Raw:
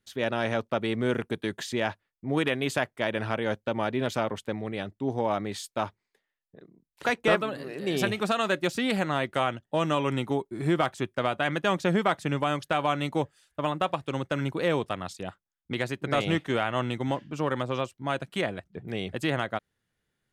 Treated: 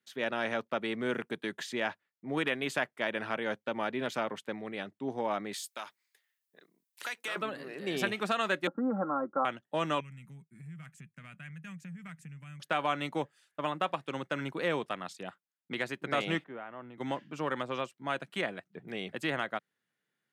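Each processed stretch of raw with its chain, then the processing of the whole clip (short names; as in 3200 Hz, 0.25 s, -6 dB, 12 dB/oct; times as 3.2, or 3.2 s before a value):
5.53–7.36 tilt +4.5 dB/oct + compressor 2.5:1, threshold -35 dBFS
8.67–9.45 Chebyshev low-pass 1400 Hz, order 6 + comb 3.7 ms, depth 76%
10–12.6 EQ curve 110 Hz 0 dB, 160 Hz +8 dB, 340 Hz -27 dB, 860 Hz -27 dB, 1700 Hz -12 dB, 2500 Hz -8 dB, 3600 Hz -22 dB, 7200 Hz -4 dB + compressor 4:1, threshold -36 dBFS
16.44–16.98 Bessel low-pass 1200 Hz + compressor 2:1, threshold -40 dBFS + three-band expander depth 100%
whole clip: HPF 150 Hz 24 dB/oct; bell 1800 Hz +5 dB 1.8 oct; gain -6.5 dB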